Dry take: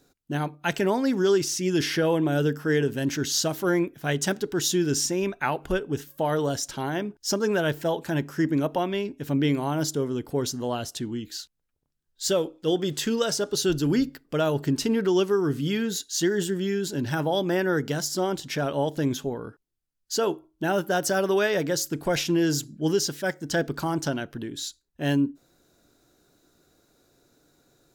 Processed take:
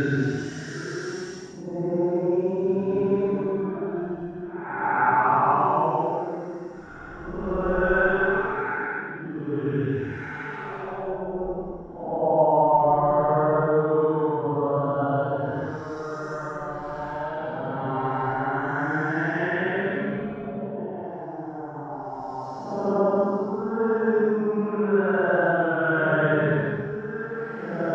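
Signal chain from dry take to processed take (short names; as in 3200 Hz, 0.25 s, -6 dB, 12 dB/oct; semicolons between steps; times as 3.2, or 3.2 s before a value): regenerating reverse delay 0.282 s, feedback 56%, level -10.5 dB; LFO low-pass saw up 0.99 Hz 780–1900 Hz; Paulstretch 9.5×, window 0.10 s, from 4.91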